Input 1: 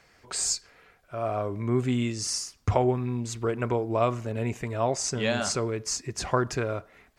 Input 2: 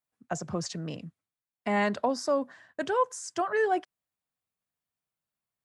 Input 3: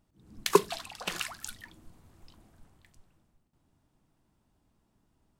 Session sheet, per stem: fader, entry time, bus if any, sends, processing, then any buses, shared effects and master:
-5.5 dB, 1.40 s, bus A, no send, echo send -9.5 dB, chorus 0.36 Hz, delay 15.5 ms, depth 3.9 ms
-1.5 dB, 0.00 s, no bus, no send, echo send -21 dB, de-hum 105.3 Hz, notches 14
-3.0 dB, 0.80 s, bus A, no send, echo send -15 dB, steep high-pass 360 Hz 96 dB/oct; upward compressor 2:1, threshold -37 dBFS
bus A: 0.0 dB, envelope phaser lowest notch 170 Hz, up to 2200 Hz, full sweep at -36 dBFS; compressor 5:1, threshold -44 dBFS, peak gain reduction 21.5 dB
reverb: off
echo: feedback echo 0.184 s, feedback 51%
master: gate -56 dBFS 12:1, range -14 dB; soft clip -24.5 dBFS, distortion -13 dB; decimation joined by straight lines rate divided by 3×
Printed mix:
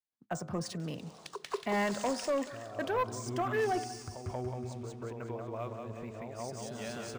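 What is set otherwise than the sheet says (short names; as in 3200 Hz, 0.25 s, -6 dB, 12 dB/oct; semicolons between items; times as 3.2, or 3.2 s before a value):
stem 1: missing chorus 0.36 Hz, delay 15.5 ms, depth 3.9 ms; stem 3 -3.0 dB -> +3.0 dB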